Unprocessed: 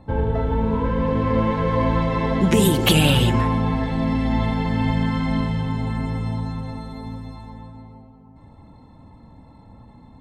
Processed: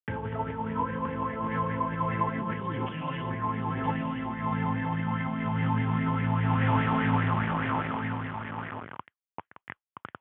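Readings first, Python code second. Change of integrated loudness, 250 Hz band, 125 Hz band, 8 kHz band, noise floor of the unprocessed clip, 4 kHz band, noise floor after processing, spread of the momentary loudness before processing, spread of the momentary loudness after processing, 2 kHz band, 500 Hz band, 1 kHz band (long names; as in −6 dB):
−8.5 dB, −8.5 dB, −7.5 dB, below −40 dB, −48 dBFS, −18.5 dB, below −85 dBFS, 17 LU, 19 LU, −3.5 dB, −11.5 dB, −2.0 dB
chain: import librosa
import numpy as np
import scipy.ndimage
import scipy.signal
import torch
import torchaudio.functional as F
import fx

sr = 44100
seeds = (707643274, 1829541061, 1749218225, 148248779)

y = fx.quant_dither(x, sr, seeds[0], bits=6, dither='none')
y = fx.over_compress(y, sr, threshold_db=-29.0, ratio=-1.0)
y = scipy.signal.sosfilt(scipy.signal.butter(4, 95.0, 'highpass', fs=sr, output='sos'), y)
y = fx.low_shelf(y, sr, hz=390.0, db=7.5)
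y = y + 10.0 ** (-6.0 / 20.0) * np.pad(y, (int(973 * sr / 1000.0), 0))[:len(y)]
y = fx.mod_noise(y, sr, seeds[1], snr_db=19)
y = scipy.signal.sosfilt(scipy.signal.butter(16, 3300.0, 'lowpass', fs=sr, output='sos'), y)
y = fx.bell_lfo(y, sr, hz=4.9, low_hz=930.0, high_hz=1900.0, db=17)
y = y * 10.0 ** (-7.5 / 20.0)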